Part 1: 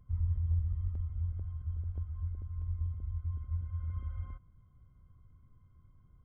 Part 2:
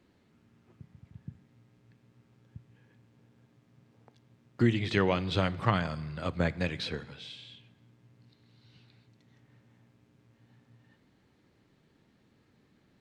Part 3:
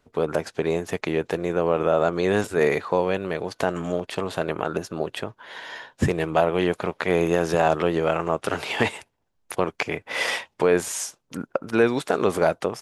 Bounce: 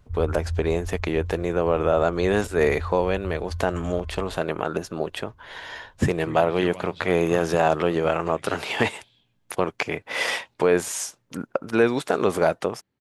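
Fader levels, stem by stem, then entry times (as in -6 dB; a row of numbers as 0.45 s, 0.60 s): +2.0 dB, -12.0 dB, 0.0 dB; 0.00 s, 1.65 s, 0.00 s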